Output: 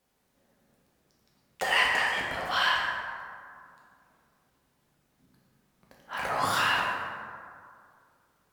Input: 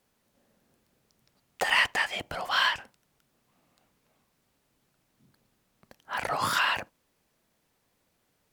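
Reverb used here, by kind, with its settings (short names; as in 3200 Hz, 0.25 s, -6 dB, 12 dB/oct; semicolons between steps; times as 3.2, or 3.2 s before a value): plate-style reverb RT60 2.2 s, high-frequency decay 0.45×, DRR -3.5 dB; gain -4 dB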